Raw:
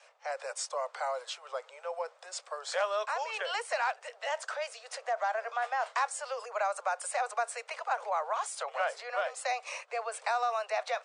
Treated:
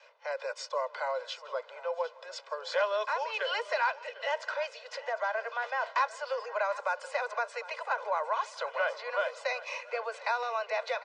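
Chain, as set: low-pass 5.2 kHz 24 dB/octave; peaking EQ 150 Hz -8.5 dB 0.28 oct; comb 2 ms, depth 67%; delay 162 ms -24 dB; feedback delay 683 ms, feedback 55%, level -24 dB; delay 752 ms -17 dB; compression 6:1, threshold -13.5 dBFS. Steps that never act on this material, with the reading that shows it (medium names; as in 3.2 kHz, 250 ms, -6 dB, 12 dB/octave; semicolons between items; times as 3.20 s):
peaking EQ 150 Hz: input has nothing below 380 Hz; compression, threshold -13.5 dBFS: peak at its input -17.0 dBFS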